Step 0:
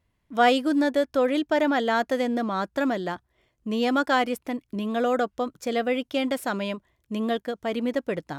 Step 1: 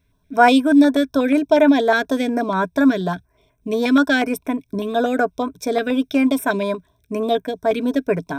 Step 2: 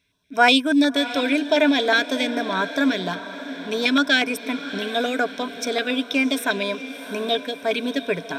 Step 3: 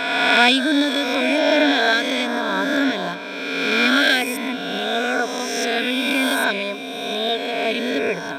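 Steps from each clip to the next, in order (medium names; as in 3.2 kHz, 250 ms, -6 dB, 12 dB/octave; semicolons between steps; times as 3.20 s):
rippled EQ curve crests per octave 1.6, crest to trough 13 dB; step-sequenced notch 8.3 Hz 820–4500 Hz; trim +6.5 dB
frequency weighting D; on a send: echo that smears into a reverb 674 ms, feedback 55%, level -13 dB; on the sum: trim -4.5 dB
reverse spectral sustain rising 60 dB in 1.92 s; trim -2.5 dB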